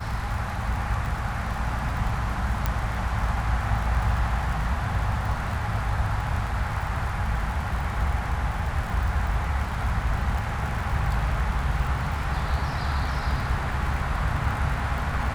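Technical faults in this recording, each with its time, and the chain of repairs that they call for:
surface crackle 52 per second −31 dBFS
0:02.66: click −10 dBFS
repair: click removal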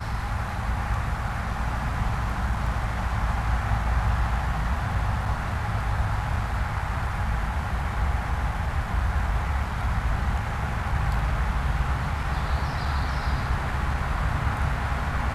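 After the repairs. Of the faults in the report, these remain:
0:02.66: click

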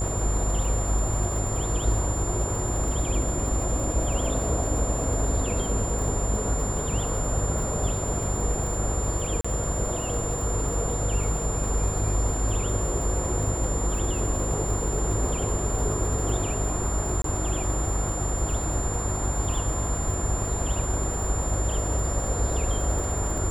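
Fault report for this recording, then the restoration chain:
mains buzz 50 Hz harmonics 14 −30 dBFS
surface crackle 46 per second −32 dBFS
whistle 7,200 Hz −32 dBFS
0:09.41–0:09.45: drop-out 35 ms
0:17.22–0:17.24: drop-out 23 ms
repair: click removal
notch filter 7,200 Hz, Q 30
hum removal 50 Hz, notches 14
repair the gap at 0:09.41, 35 ms
repair the gap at 0:17.22, 23 ms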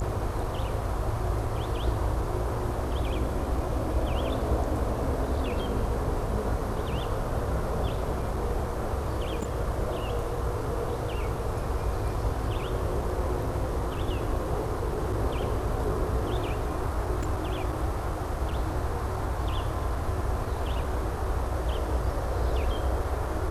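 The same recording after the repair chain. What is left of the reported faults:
none of them is left

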